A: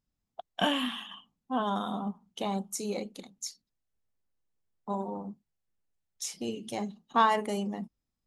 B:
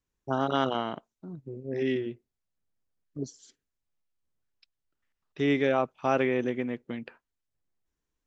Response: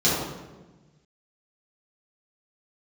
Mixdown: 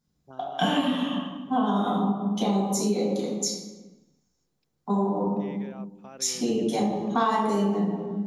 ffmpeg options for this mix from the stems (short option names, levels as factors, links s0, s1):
-filter_complex "[0:a]volume=0.944,asplit=2[s0][s1];[s1]volume=0.501[s2];[1:a]alimiter=limit=0.133:level=0:latency=1:release=88,volume=0.15[s3];[2:a]atrim=start_sample=2205[s4];[s2][s4]afir=irnorm=-1:irlink=0[s5];[s0][s3][s5]amix=inputs=3:normalize=0,acompressor=threshold=0.0794:ratio=4"